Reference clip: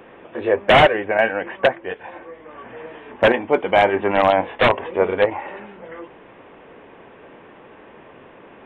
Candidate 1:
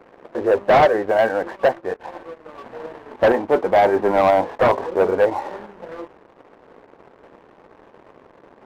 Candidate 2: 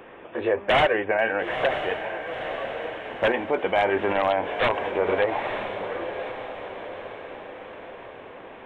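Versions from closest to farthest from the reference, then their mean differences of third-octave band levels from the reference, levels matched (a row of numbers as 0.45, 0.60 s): 1, 2; 4.0, 6.0 dB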